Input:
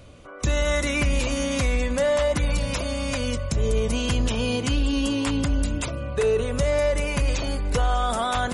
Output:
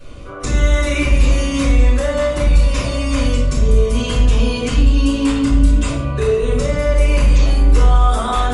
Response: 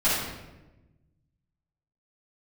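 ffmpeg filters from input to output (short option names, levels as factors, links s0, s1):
-filter_complex "[0:a]acompressor=threshold=0.0398:ratio=2.5[s0];[1:a]atrim=start_sample=2205,asetrate=74970,aresample=44100[s1];[s0][s1]afir=irnorm=-1:irlink=0,volume=0.891"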